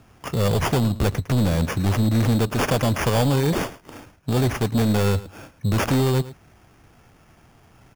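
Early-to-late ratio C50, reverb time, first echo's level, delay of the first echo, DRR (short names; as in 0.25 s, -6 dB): none, none, -16.5 dB, 0.109 s, none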